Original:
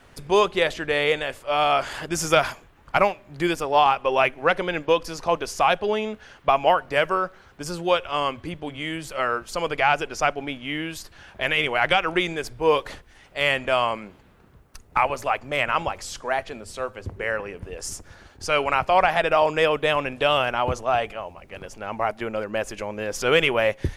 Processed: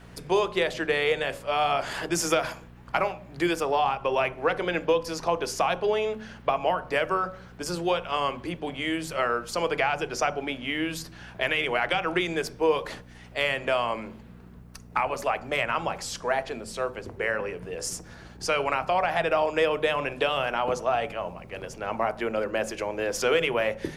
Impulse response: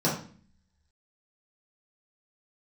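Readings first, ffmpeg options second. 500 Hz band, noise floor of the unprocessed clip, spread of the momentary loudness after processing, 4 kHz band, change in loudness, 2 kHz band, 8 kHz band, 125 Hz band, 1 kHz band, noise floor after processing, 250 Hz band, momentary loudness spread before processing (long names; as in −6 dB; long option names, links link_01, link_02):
−3.0 dB, −53 dBFS, 9 LU, −4.5 dB, −4.0 dB, −4.0 dB, −0.5 dB, −4.0 dB, −5.0 dB, −47 dBFS, −1.5 dB, 14 LU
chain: -filter_complex "[0:a]acrossover=split=82|260[link_01][link_02][link_03];[link_01]acompressor=threshold=-53dB:ratio=4[link_04];[link_02]acompressor=threshold=-50dB:ratio=4[link_05];[link_03]acompressor=threshold=-23dB:ratio=4[link_06];[link_04][link_05][link_06]amix=inputs=3:normalize=0,aeval=exprs='val(0)+0.00316*(sin(2*PI*60*n/s)+sin(2*PI*2*60*n/s)/2+sin(2*PI*3*60*n/s)/3+sin(2*PI*4*60*n/s)/4+sin(2*PI*5*60*n/s)/5)':channel_layout=same,asplit=2[link_07][link_08];[1:a]atrim=start_sample=2205,lowshelf=frequency=430:gain=5[link_09];[link_08][link_09]afir=irnorm=-1:irlink=0,volume=-24.5dB[link_10];[link_07][link_10]amix=inputs=2:normalize=0"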